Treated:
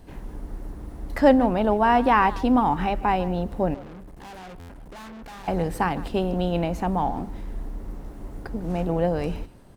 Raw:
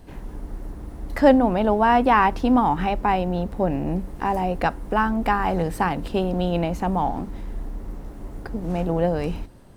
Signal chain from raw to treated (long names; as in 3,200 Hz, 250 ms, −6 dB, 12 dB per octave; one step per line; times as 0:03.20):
0:03.74–0:05.48: tube saturation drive 38 dB, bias 0.45
far-end echo of a speakerphone 150 ms, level −17 dB
buffer that repeats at 0:04.59, samples 512, times 8
level −1.5 dB